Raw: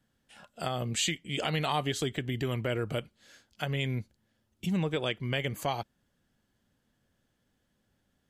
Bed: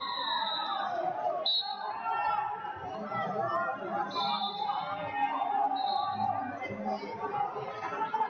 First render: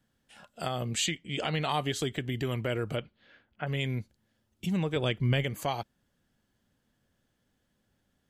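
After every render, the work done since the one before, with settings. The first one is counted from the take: 1.06–1.69 air absorption 57 m; 2.95–3.66 LPF 4900 Hz -> 2100 Hz 24 dB/oct; 4.96–5.44 low shelf 220 Hz +11 dB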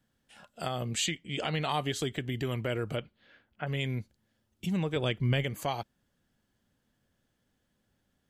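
gain -1 dB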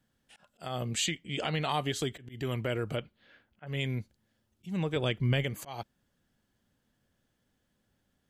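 auto swell 0.182 s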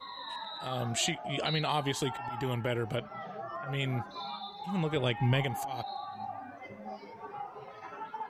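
add bed -9 dB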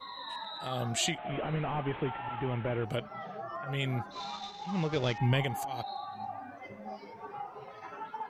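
1.18–2.85 delta modulation 16 kbps, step -40 dBFS; 4.12–5.18 CVSD 32 kbps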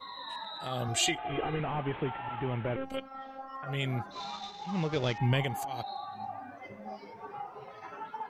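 0.88–1.6 comb 2.5 ms, depth 87%; 2.76–3.63 robotiser 267 Hz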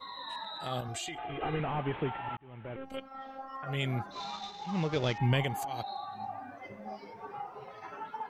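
0.8–1.41 compressor 8:1, threshold -35 dBFS; 2.37–3.28 fade in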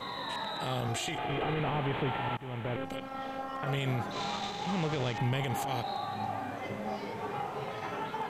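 per-bin compression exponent 0.6; limiter -22.5 dBFS, peak gain reduction 7.5 dB

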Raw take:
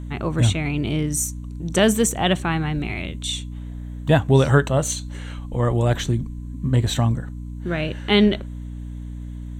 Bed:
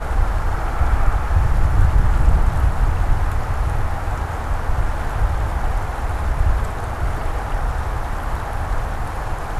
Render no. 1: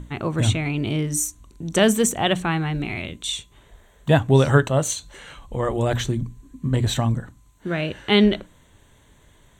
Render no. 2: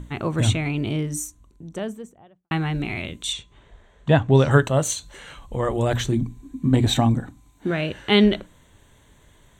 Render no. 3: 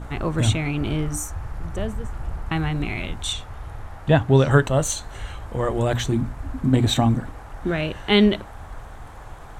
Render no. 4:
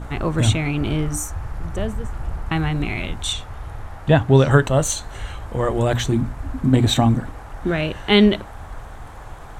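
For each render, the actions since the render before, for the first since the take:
notches 60/120/180/240/300 Hz
0.49–2.51 studio fade out; 3.33–4.51 air absorption 95 m; 6.12–7.71 small resonant body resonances 280/760/2300/3700 Hz, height 9 dB, ringing for 25 ms
add bed -15 dB
gain +2.5 dB; limiter -3 dBFS, peak gain reduction 1.5 dB

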